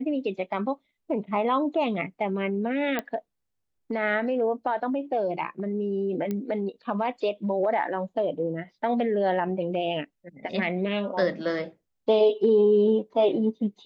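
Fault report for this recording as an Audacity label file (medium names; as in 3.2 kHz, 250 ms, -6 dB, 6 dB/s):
2.990000	2.990000	pop -14 dBFS
6.310000	6.310000	pop -18 dBFS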